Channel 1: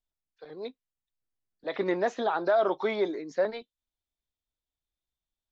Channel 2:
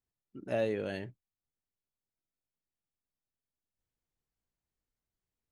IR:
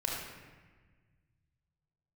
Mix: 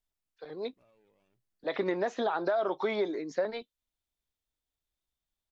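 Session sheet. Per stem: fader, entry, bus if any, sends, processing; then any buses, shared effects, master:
+1.5 dB, 0.00 s, no send, no processing
−18.0 dB, 0.30 s, no send, lower of the sound and its delayed copy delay 0.34 ms; brickwall limiter −29.5 dBFS, peak gain reduction 9.5 dB; automatic ducking −15 dB, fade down 1.40 s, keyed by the first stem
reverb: not used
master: downward compressor 5 to 1, threshold −26 dBFS, peak gain reduction 7 dB

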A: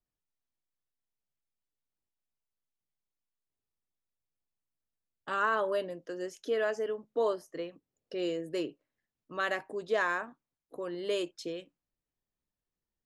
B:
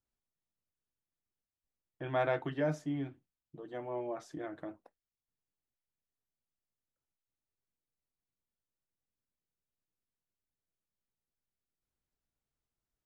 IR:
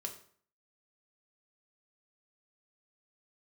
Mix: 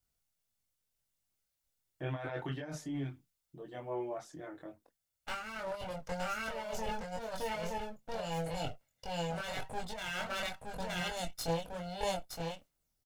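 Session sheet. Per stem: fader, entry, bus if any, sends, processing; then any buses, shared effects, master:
+2.0 dB, 0.00 s, no send, echo send −4.5 dB, lower of the sound and its delayed copy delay 1.4 ms
+0.5 dB, 0.00 s, no send, no echo send, automatic ducking −9 dB, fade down 2.00 s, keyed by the first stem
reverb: not used
echo: single-tap delay 918 ms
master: high-shelf EQ 3,700 Hz +8 dB; compressor whose output falls as the input rises −35 dBFS, ratio −1; multi-voice chorus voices 4, 0.9 Hz, delay 23 ms, depth 1.2 ms

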